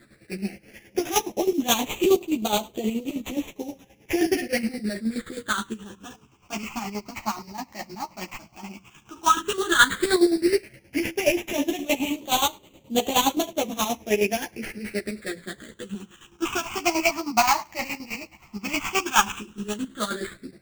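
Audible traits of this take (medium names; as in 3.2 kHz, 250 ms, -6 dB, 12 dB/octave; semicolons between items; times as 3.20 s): aliases and images of a low sample rate 5.1 kHz, jitter 20%; phasing stages 8, 0.098 Hz, lowest notch 460–1600 Hz; chopped level 9.5 Hz, depth 65%, duty 40%; a shimmering, thickened sound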